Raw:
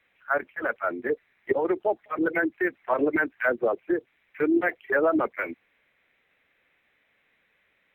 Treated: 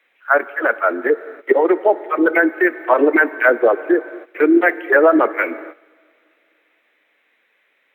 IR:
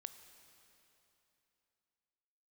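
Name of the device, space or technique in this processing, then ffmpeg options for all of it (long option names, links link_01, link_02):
keyed gated reverb: -filter_complex "[0:a]asplit=3[link_01][link_02][link_03];[1:a]atrim=start_sample=2205[link_04];[link_02][link_04]afir=irnorm=-1:irlink=0[link_05];[link_03]apad=whole_len=350577[link_06];[link_05][link_06]sidechaingate=range=-16dB:threshold=-58dB:ratio=16:detection=peak,volume=6dB[link_07];[link_01][link_07]amix=inputs=2:normalize=0,highpass=frequency=280:width=0.5412,highpass=frequency=280:width=1.3066,volume=4.5dB"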